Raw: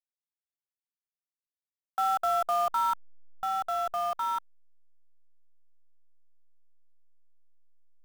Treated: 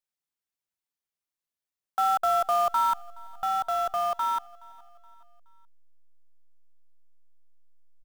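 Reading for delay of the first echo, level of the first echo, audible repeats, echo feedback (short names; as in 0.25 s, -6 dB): 0.422 s, -24.0 dB, 2, 47%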